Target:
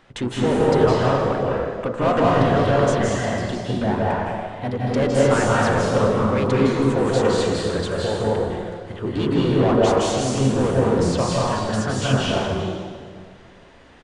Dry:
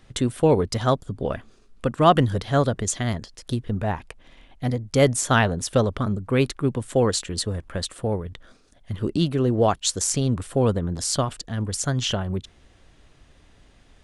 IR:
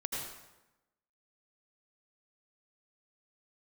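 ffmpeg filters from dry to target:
-filter_complex "[0:a]asplit=3[s0][s1][s2];[s1]asetrate=35002,aresample=44100,atempo=1.25992,volume=0.141[s3];[s2]asetrate=37084,aresample=44100,atempo=1.18921,volume=0.447[s4];[s0][s3][s4]amix=inputs=3:normalize=0,bandreject=f=56.65:t=h:w=4,bandreject=f=113.3:t=h:w=4,bandreject=f=169.95:t=h:w=4,bandreject=f=226.6:t=h:w=4,bandreject=f=283.25:t=h:w=4,bandreject=f=339.9:t=h:w=4,bandreject=f=396.55:t=h:w=4,bandreject=f=453.2:t=h:w=4,bandreject=f=509.85:t=h:w=4,bandreject=f=566.5:t=h:w=4,bandreject=f=623.15:t=h:w=4,bandreject=f=679.8:t=h:w=4,bandreject=f=736.45:t=h:w=4,bandreject=f=793.1:t=h:w=4,bandreject=f=849.75:t=h:w=4,bandreject=f=906.4:t=h:w=4,bandreject=f=963.05:t=h:w=4,bandreject=f=1019.7:t=h:w=4,bandreject=f=1076.35:t=h:w=4,bandreject=f=1133:t=h:w=4,bandreject=f=1189.65:t=h:w=4,bandreject=f=1246.3:t=h:w=4,bandreject=f=1302.95:t=h:w=4,bandreject=f=1359.6:t=h:w=4,bandreject=f=1416.25:t=h:w=4,asplit=2[s5][s6];[s6]highpass=f=720:p=1,volume=12.6,asoftclip=type=tanh:threshold=0.422[s7];[s5][s7]amix=inputs=2:normalize=0,lowpass=f=1200:p=1,volume=0.501[s8];[1:a]atrim=start_sample=2205,asetrate=22050,aresample=44100[s9];[s8][s9]afir=irnorm=-1:irlink=0,aresample=22050,aresample=44100,volume=0.398"

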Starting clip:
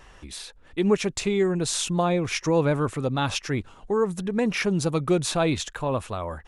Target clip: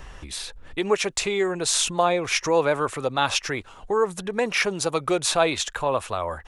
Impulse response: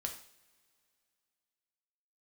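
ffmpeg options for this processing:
-filter_complex "[0:a]lowshelf=f=180:g=8.5,acrossover=split=440|4200[s0][s1][s2];[s0]acompressor=threshold=0.00708:ratio=6[s3];[s3][s1][s2]amix=inputs=3:normalize=0,volume=1.78"

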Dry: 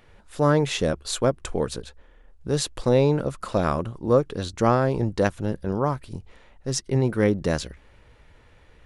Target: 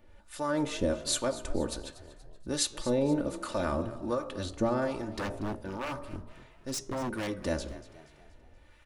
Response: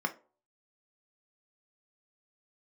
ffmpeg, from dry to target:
-filter_complex "[0:a]highshelf=f=8500:g=5,aecho=1:1:3.4:0.62,bandreject=f=57.11:t=h:w=4,bandreject=f=114.22:t=h:w=4,bandreject=f=171.33:t=h:w=4,bandreject=f=228.44:t=h:w=4,bandreject=f=285.55:t=h:w=4,bandreject=f=342.66:t=h:w=4,bandreject=f=399.77:t=h:w=4,bandreject=f=456.88:t=h:w=4,bandreject=f=513.99:t=h:w=4,bandreject=f=571.1:t=h:w=4,bandreject=f=628.21:t=h:w=4,bandreject=f=685.32:t=h:w=4,bandreject=f=742.43:t=h:w=4,bandreject=f=799.54:t=h:w=4,bandreject=f=856.65:t=h:w=4,bandreject=f=913.76:t=h:w=4,bandreject=f=970.87:t=h:w=4,bandreject=f=1027.98:t=h:w=4,bandreject=f=1085.09:t=h:w=4,bandreject=f=1142.2:t=h:w=4,bandreject=f=1199.31:t=h:w=4,bandreject=f=1256.42:t=h:w=4,bandreject=f=1313.53:t=h:w=4,bandreject=f=1370.64:t=h:w=4,alimiter=limit=0.211:level=0:latency=1:release=52,acrossover=split=750[s0][s1];[s0]aeval=exprs='val(0)*(1-0.7/2+0.7/2*cos(2*PI*1.3*n/s))':c=same[s2];[s1]aeval=exprs='val(0)*(1-0.7/2-0.7/2*cos(2*PI*1.3*n/s))':c=same[s3];[s2][s3]amix=inputs=2:normalize=0,flanger=delay=9.9:depth=7.4:regen=-85:speed=0.43:shape=triangular,asettb=1/sr,asplit=3[s4][s5][s6];[s4]atrim=end=5.014[s7];[s5]atrim=start=5.01:end=7.28,asetpts=PTS-STARTPTS,afade=t=in:d=0.004:c=qsin,afade=t=out:st=2.266:d=0.004:c=qsin,aeval=exprs='0.0335*(abs(mod(val(0)/0.0335+3,4)-2)-1)':c=same[s8];[s6]atrim=start=7.276[s9];[s7][s8]acrossfade=d=0.004:c1=hsin:c2=qsin[s10];[s10][s9]acrossfade=d=0.004:c1=qsin:c2=hsin,asplit=5[s11][s12][s13][s14][s15];[s12]adelay=238,afreqshift=37,volume=0.15[s16];[s13]adelay=476,afreqshift=74,volume=0.0676[s17];[s14]adelay=714,afreqshift=111,volume=0.0302[s18];[s15]adelay=952,afreqshift=148,volume=0.0136[s19];[s11][s16][s17][s18][s19]amix=inputs=5:normalize=0,volume=1.19"

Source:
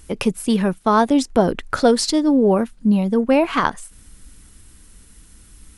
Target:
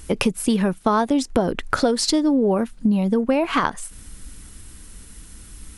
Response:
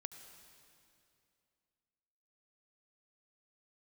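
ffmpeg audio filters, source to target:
-af "acompressor=threshold=0.0891:ratio=6,volume=1.78"

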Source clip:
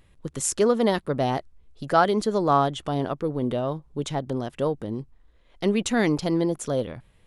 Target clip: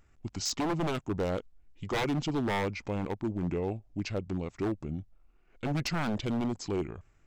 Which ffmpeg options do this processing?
-af "asetrate=31183,aresample=44100,atempo=1.41421,aeval=exprs='0.112*(abs(mod(val(0)/0.112+3,4)-2)-1)':c=same,volume=0.562"

